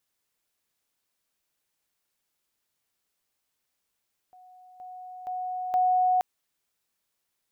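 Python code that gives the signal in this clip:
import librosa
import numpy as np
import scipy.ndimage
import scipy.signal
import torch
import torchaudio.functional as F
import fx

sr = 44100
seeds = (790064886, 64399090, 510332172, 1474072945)

y = fx.level_ladder(sr, hz=735.0, from_db=-49.5, step_db=10.0, steps=4, dwell_s=0.47, gap_s=0.0)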